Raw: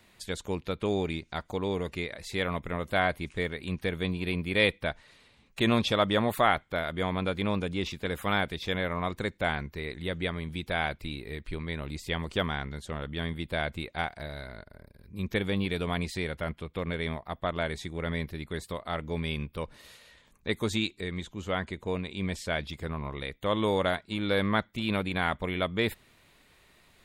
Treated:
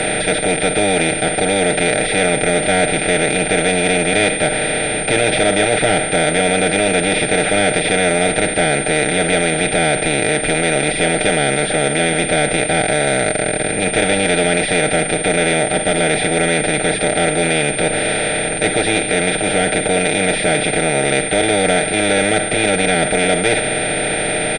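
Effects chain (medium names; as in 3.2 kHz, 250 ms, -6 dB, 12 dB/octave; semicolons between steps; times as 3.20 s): spectral levelling over time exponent 0.2; bass shelf 210 Hz -3.5 dB; comb 6.6 ms, depth 68%; waveshaping leveller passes 2; tempo 1.1×; Butterworth band-stop 1.1 kHz, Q 1.7; class-D stage that switches slowly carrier 8.9 kHz; trim -2.5 dB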